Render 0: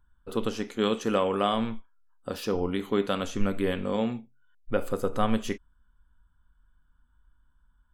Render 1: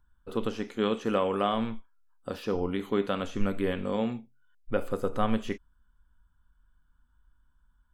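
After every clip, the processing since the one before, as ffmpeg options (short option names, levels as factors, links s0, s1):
-filter_complex "[0:a]acrossover=split=3600[s0][s1];[s1]acompressor=threshold=0.00316:ratio=4:attack=1:release=60[s2];[s0][s2]amix=inputs=2:normalize=0,volume=0.841"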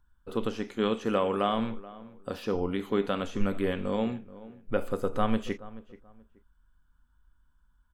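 -filter_complex "[0:a]asplit=2[s0][s1];[s1]adelay=430,lowpass=f=1600:p=1,volume=0.133,asplit=2[s2][s3];[s3]adelay=430,lowpass=f=1600:p=1,volume=0.27[s4];[s0][s2][s4]amix=inputs=3:normalize=0"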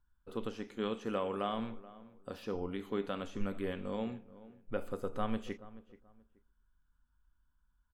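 -filter_complex "[0:a]asplit=2[s0][s1];[s1]adelay=125,lowpass=f=1000:p=1,volume=0.0794,asplit=2[s2][s3];[s3]adelay=125,lowpass=f=1000:p=1,volume=0.5,asplit=2[s4][s5];[s5]adelay=125,lowpass=f=1000:p=1,volume=0.5[s6];[s0][s2][s4][s6]amix=inputs=4:normalize=0,volume=0.376"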